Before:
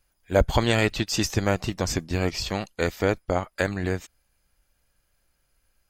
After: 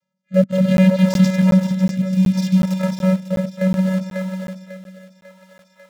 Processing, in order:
feedback delay that plays each chunk backwards 154 ms, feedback 57%, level −8 dB
channel vocoder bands 16, square 187 Hz
in parallel at −6 dB: centre clipping without the shift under −27 dBFS
0:01.91–0:02.63: on the sum: linear-phase brick-wall band-stop 340–2,100 Hz
feedback echo with a high-pass in the loop 546 ms, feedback 57%, high-pass 350 Hz, level −7.5 dB
rotating-speaker cabinet horn 0.65 Hz
regular buffer underruns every 0.37 s, samples 512, zero, from 0:00.77
level +7.5 dB

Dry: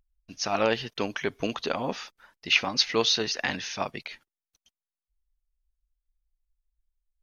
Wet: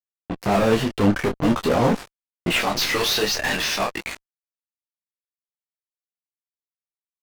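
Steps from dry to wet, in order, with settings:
spectral tilt −2 dB per octave, from 0:02.59 +2.5 dB per octave
low-pass that shuts in the quiet parts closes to 1,700 Hz, open at −21 dBFS
fuzz pedal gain 40 dB, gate −36 dBFS
high-shelf EQ 2,100 Hz −9 dB
brickwall limiter −15 dBFS, peak gain reduction 3 dB
micro pitch shift up and down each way 16 cents
level +4.5 dB

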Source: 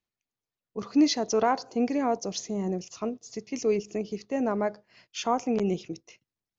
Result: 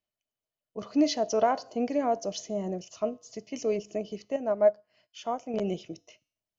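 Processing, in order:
tuned comb filter 97 Hz, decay 0.55 s, harmonics odd, mix 40%
hollow resonant body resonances 620/3,000 Hz, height 15 dB, ringing for 50 ms
0:04.36–0:05.54: expander for the loud parts 1.5 to 1, over −33 dBFS

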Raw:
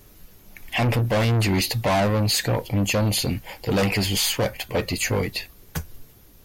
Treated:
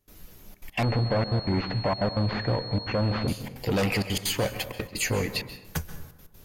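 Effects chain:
downward compressor 2 to 1, threshold −26 dBFS, peak gain reduction 4.5 dB
gate pattern ".xxxxxx.x" 194 BPM −24 dB
dense smooth reverb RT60 0.93 s, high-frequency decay 0.5×, pre-delay 120 ms, DRR 11 dB
0:00.83–0:03.28: switching amplifier with a slow clock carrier 4,300 Hz

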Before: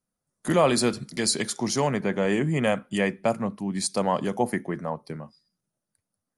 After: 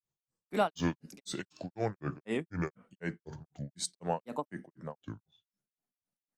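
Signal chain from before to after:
downsampling to 22,050 Hz
granular cloud 208 ms, grains 4 per second, spray 25 ms, pitch spread up and down by 7 semitones
level −6.5 dB

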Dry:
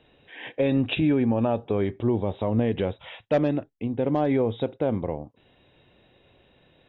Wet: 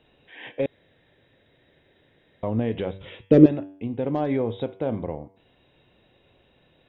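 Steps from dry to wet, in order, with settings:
0:02.98–0:03.46: low shelf with overshoot 540 Hz +11 dB, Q 3
hum removal 96.15 Hz, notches 37
0:00.66–0:02.43: fill with room tone
level −1.5 dB

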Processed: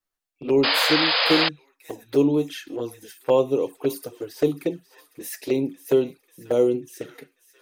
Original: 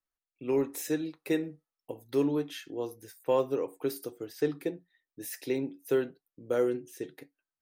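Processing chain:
delay with a high-pass on its return 541 ms, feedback 65%, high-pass 1,500 Hz, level −16 dB
flanger swept by the level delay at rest 10.5 ms, full sweep at −27 dBFS
sound drawn into the spectrogram noise, 0:00.63–0:01.49, 450–5,100 Hz −30 dBFS
level +9 dB

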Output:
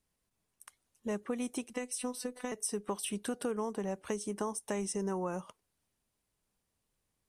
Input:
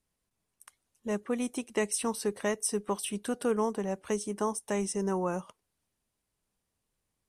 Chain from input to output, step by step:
downward compressor 4 to 1, threshold −32 dBFS, peak gain reduction 8 dB
0:01.73–0:02.52: phases set to zero 249 Hz

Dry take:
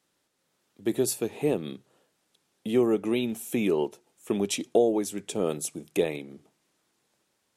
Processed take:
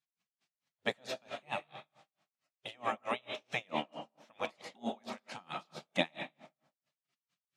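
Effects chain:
high-pass filter 360 Hz 12 dB per octave
gate on every frequency bin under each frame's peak −15 dB weak
high-frequency loss of the air 130 metres
on a send at −6.5 dB: convolution reverb RT60 0.70 s, pre-delay 70 ms
on the sum: tremolo with a sine in dB 4.5 Hz, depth 35 dB
level +10.5 dB

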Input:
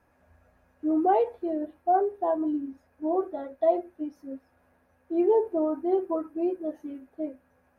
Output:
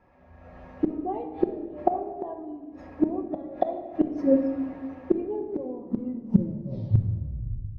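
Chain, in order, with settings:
turntable brake at the end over 2.57 s
high-frequency loss of the air 220 metres
notch filter 1,500 Hz, Q 5.4
hum removal 199.6 Hz, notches 39
gate with flip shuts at −28 dBFS, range −30 dB
automatic gain control gain up to 14.5 dB
rectangular room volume 1,600 cubic metres, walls mixed, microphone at 1 metre
level +5.5 dB

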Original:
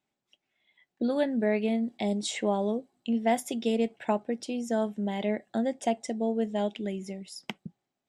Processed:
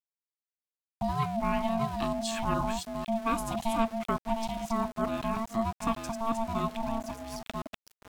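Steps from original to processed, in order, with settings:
delay that plays each chunk backwards 508 ms, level −4 dB
centre clipping without the shift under −38.5 dBFS
ring modulation 450 Hz

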